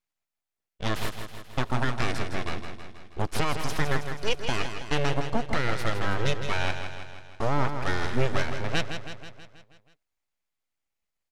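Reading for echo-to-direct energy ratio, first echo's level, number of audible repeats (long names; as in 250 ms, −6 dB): −6.0 dB, −8.0 dB, 6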